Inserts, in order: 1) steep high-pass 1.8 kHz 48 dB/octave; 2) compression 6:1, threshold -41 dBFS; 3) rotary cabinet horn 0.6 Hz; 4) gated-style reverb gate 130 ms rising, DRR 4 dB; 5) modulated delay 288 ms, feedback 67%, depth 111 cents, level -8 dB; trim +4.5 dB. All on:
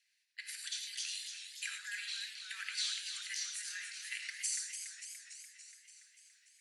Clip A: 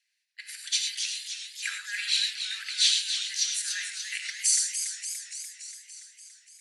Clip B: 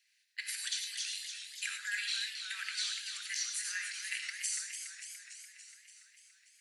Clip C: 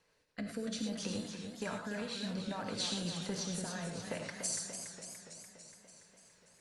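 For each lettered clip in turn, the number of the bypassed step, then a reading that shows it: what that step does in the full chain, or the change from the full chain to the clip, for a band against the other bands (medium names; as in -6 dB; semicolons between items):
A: 2, mean gain reduction 7.5 dB; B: 3, 8 kHz band -2.0 dB; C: 1, 1 kHz band +17.5 dB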